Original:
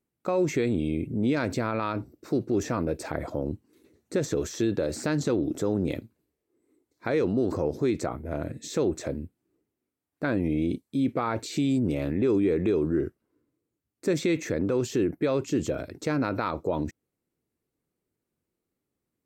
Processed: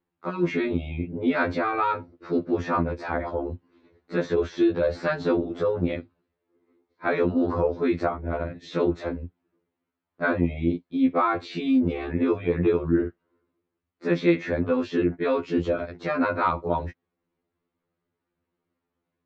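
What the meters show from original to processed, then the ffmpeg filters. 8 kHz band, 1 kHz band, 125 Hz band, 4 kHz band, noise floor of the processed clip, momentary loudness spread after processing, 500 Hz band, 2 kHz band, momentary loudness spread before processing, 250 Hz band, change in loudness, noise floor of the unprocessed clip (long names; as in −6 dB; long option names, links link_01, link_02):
below −15 dB, +7.0 dB, 0.0 dB, −1.0 dB, −83 dBFS, 9 LU, +2.5 dB, +6.0 dB, 8 LU, +1.5 dB, +2.5 dB, −85 dBFS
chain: -af "lowpass=frequency=4000:width=0.5412,lowpass=frequency=4000:width=1.3066,equalizer=frequency=1100:width_type=o:width=1.7:gain=7.5,afftfilt=real='re*2*eq(mod(b,4),0)':imag='im*2*eq(mod(b,4),0)':win_size=2048:overlap=0.75,volume=3dB"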